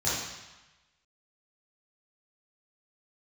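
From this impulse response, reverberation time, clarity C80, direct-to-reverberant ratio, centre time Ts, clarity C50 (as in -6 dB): 1.1 s, 2.5 dB, -10.0 dB, 80 ms, -1.0 dB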